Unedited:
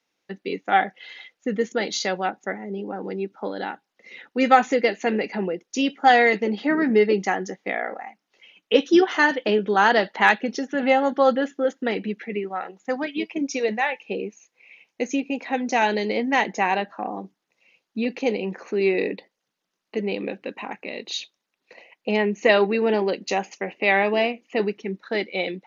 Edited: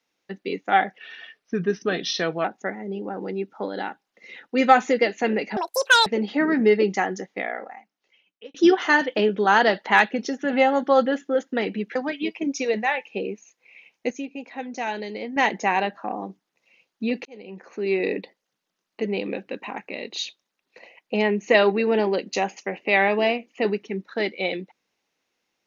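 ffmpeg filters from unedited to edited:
-filter_complex "[0:a]asplit=10[a][b][c][d][e][f][g][h][i][j];[a]atrim=end=0.984[k];[b]atrim=start=0.98:end=2.27,asetpts=PTS-STARTPTS,asetrate=38808,aresample=44100[l];[c]atrim=start=2.266:end=5.394[m];[d]atrim=start=5.39:end=6.36,asetpts=PTS-STARTPTS,asetrate=85995,aresample=44100[n];[e]atrim=start=6.356:end=8.84,asetpts=PTS-STARTPTS,afade=t=out:st=1.084:d=1.4[o];[f]atrim=start=8.84:end=12.252,asetpts=PTS-STARTPTS,afade=t=in:d=0.004:c=hsin[p];[g]atrim=start=12.898:end=15.052[q];[h]atrim=start=15.048:end=16.312,asetpts=PTS-STARTPTS,volume=-8dB[r];[i]atrim=start=16.308:end=18.2,asetpts=PTS-STARTPTS,afade=t=out:st=1.888:d=0.004:c=hsin[s];[j]atrim=start=18.2,asetpts=PTS-STARTPTS,afade=t=in:d=0.9[t];[k][l]acrossfade=d=0.004:c1=hsin:c2=hsin[u];[u][m]acrossfade=d=0.004:c1=hsin:c2=hsin[v];[v][n]acrossfade=d=0.004:c1=hsin:c2=hsin[w];[o][p]concat=n=2:v=0:a=1[x];[w][x]acrossfade=d=0.004:c1=hsin:c2=hsin[y];[y][q]acrossfade=d=0.004:c1=hsin:c2=hsin[z];[z][r]acrossfade=d=0.004:c1=hsin:c2=hsin[aa];[s][t]concat=n=2:v=0:a=1[ab];[aa][ab]acrossfade=d=0.004:c1=hsin:c2=hsin"

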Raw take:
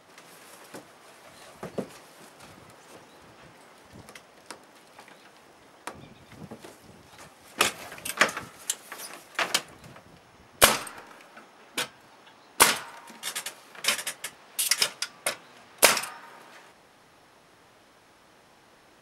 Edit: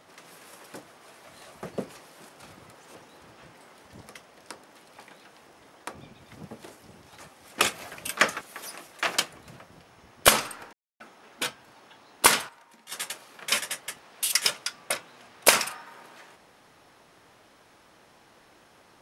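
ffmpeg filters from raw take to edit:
-filter_complex "[0:a]asplit=6[a][b][c][d][e][f];[a]atrim=end=8.412[g];[b]atrim=start=8.768:end=11.09,asetpts=PTS-STARTPTS,afade=t=out:st=2.318:d=0.004:c=hsin[h];[c]atrim=start=11.09:end=11.36,asetpts=PTS-STARTPTS,volume=0[i];[d]atrim=start=11.36:end=12.85,asetpts=PTS-STARTPTS,afade=t=in:d=0.004:c=hsin,afade=t=out:st=1.35:d=0.14:c=log:silence=0.334965[j];[e]atrim=start=12.85:end=13.28,asetpts=PTS-STARTPTS,volume=-9.5dB[k];[f]atrim=start=13.28,asetpts=PTS-STARTPTS,afade=t=in:d=0.14:c=log:silence=0.334965[l];[h][i][j][k][l]concat=n=5:v=0:a=1[m];[g][m]acrossfade=d=0.004:c1=hsin:c2=hsin"

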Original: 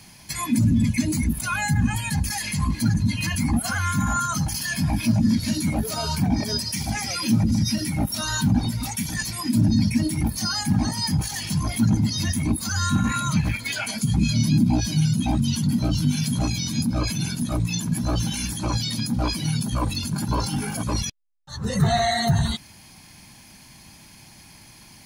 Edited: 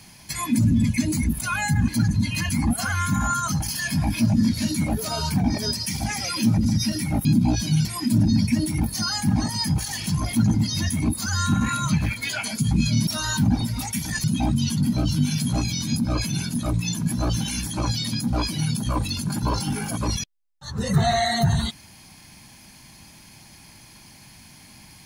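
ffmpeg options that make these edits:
-filter_complex "[0:a]asplit=6[a][b][c][d][e][f];[a]atrim=end=1.882[g];[b]atrim=start=2.738:end=8.112[h];[c]atrim=start=14.498:end=15.102[i];[d]atrim=start=9.278:end=14.502[j];[e]atrim=start=8.108:end=9.282[k];[f]atrim=start=15.098[l];[g][h]acrossfade=d=0.004:c1=hsin:c2=hsin[m];[m][i]acrossfade=d=0.004:c1=hsin:c2=hsin[n];[n][j]acrossfade=d=0.004:c1=hsin:c2=hsin[o];[o][k]acrossfade=d=0.004:c1=hsin:c2=hsin[p];[p][l]acrossfade=d=0.004:c1=hsin:c2=hsin"

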